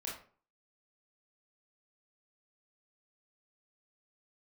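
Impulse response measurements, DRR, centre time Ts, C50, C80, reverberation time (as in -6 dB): -5.0 dB, 37 ms, 4.5 dB, 10.5 dB, 0.45 s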